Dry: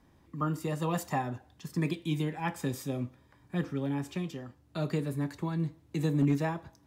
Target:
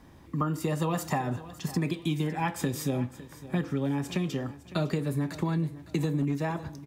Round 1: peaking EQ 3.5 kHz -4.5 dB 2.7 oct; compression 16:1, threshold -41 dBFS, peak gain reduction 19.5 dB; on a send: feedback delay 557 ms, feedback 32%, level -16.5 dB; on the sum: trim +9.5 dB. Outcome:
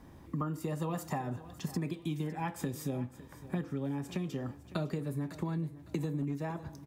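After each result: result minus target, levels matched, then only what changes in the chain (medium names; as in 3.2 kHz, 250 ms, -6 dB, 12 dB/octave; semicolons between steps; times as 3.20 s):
compression: peak gain reduction +6.5 dB; 4 kHz band -3.0 dB
change: compression 16:1, threshold -34 dBFS, peak gain reduction 13 dB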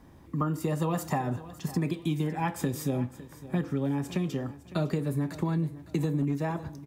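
4 kHz band -4.0 dB
remove: peaking EQ 3.5 kHz -4.5 dB 2.7 oct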